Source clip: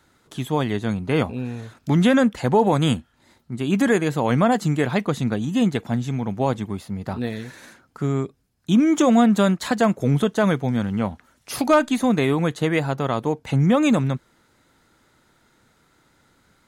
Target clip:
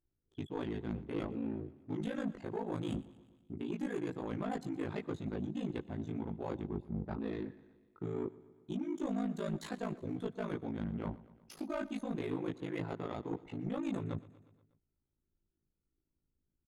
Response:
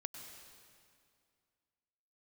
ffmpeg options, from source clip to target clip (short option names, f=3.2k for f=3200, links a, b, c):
-af "deesser=0.55,anlmdn=15.8,equalizer=f=340:w=2.8:g=10,areverse,acompressor=threshold=-25dB:ratio=16,areverse,flanger=delay=17:depth=4.2:speed=0.21,asoftclip=type=tanh:threshold=-26dB,aeval=exprs='val(0)*sin(2*PI*27*n/s)':c=same,aecho=1:1:120|240|360|480|600:0.106|0.0636|0.0381|0.0229|0.0137,volume=-1.5dB"